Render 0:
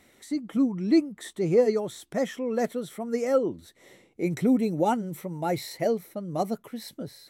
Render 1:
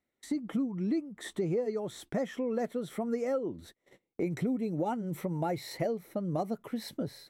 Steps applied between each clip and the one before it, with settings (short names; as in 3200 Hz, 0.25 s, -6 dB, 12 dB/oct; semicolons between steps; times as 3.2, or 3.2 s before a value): gate -50 dBFS, range -29 dB; high shelf 3100 Hz -8 dB; compressor 6:1, threshold -34 dBFS, peak gain reduction 17 dB; gain +4.5 dB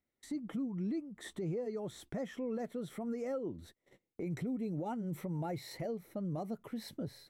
low shelf 150 Hz +8 dB; limiter -25.5 dBFS, peak gain reduction 6 dB; gain -5.5 dB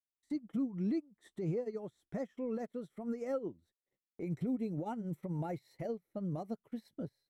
upward expander 2.5:1, over -53 dBFS; gain +3.5 dB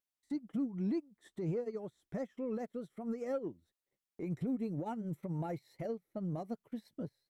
in parallel at -11.5 dB: soft clip -38 dBFS, distortion -10 dB; on the sum: vibrato 5.4 Hz 49 cents; gain -1.5 dB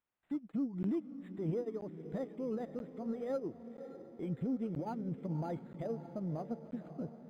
diffused feedback echo 0.564 s, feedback 53%, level -11.5 dB; crackling interface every 0.98 s, samples 512, zero, from 0.83; decimation joined by straight lines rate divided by 8×